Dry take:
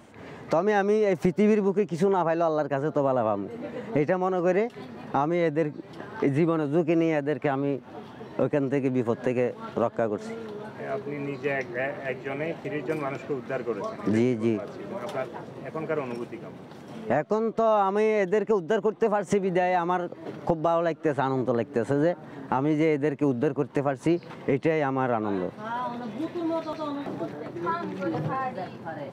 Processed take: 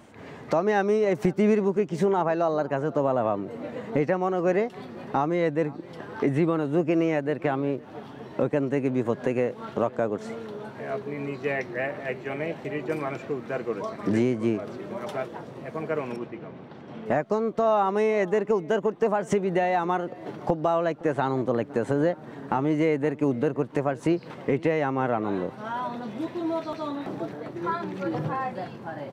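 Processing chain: 16.16–17.06 s: low-pass 3.4 kHz 12 dB/octave; echo from a far wall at 88 m, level -22 dB

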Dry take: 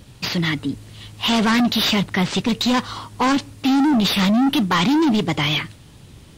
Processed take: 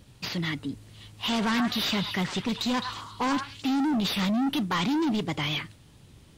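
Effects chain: 1.30–3.71 s: repeats whose band climbs or falls 106 ms, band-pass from 1.3 kHz, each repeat 1.4 oct, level -3 dB; trim -9 dB

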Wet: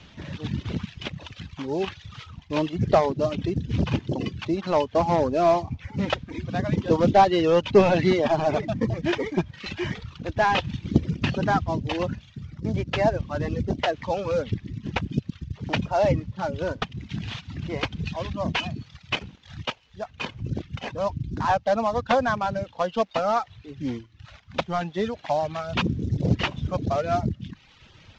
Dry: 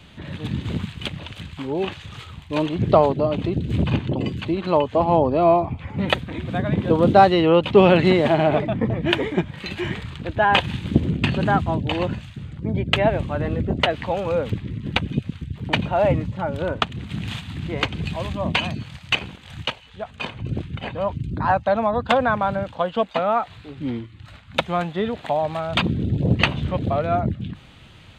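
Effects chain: CVSD coder 32 kbps; reverb removal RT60 0.93 s; trim -1.5 dB

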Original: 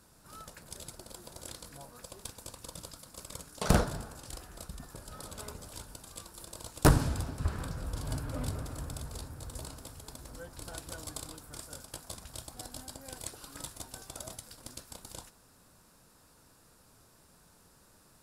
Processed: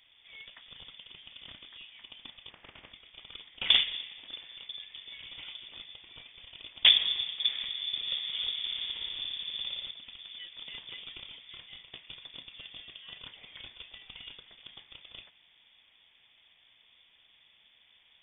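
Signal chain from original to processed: 2.49–2.90 s: spectral peaks clipped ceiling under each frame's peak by 23 dB; 8.58–9.91 s: flutter echo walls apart 9.9 m, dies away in 1.4 s; frequency inversion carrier 3.5 kHz

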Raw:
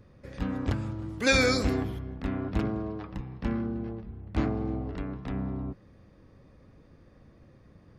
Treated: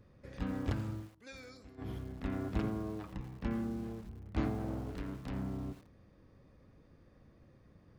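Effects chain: 0.96–1.90 s: dip -22.5 dB, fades 0.13 s; 4.58–5.43 s: self-modulated delay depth 0.52 ms; bit-crushed delay 84 ms, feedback 35%, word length 7-bit, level -13 dB; trim -6 dB

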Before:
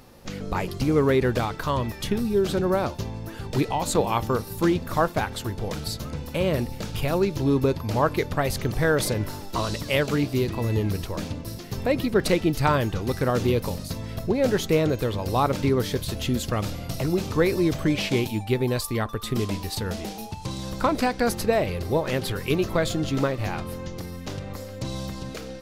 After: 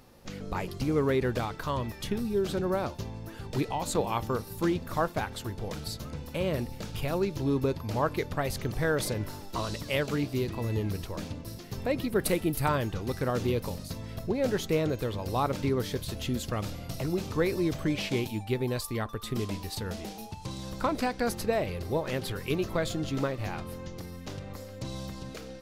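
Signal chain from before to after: 12.10–12.69 s: resonant high shelf 7.9 kHz +9 dB, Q 1.5; trim -6 dB

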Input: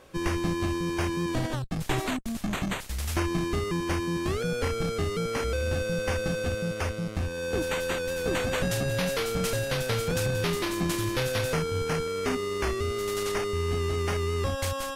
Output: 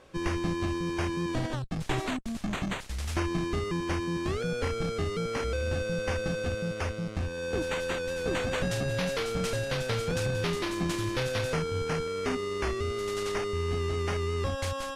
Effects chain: Bessel low-pass 7.5 kHz, order 2; trim -2 dB

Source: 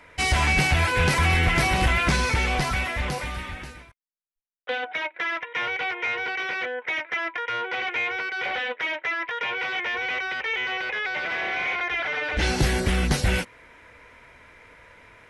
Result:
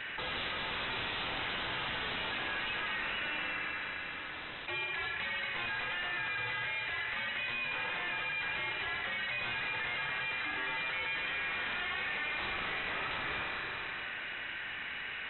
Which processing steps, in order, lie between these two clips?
steep high-pass 1 kHz 72 dB/octave; wavefolder -28.5 dBFS; flange 1.7 Hz, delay 9.7 ms, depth 1.7 ms, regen +72%; one-sided clip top -41.5 dBFS; harmony voices -12 st -16 dB; word length cut 10-bit, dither triangular; Schroeder reverb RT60 2.3 s, combs from 32 ms, DRR 2 dB; frequency inversion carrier 3.9 kHz; level flattener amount 70%

